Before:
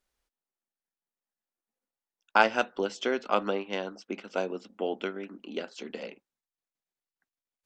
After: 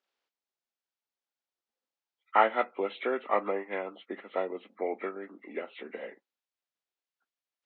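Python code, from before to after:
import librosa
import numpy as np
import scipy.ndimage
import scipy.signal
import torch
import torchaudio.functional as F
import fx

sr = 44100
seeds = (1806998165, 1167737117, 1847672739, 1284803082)

y = fx.freq_compress(x, sr, knee_hz=1100.0, ratio=1.5)
y = fx.bandpass_edges(y, sr, low_hz=330.0, high_hz=4300.0)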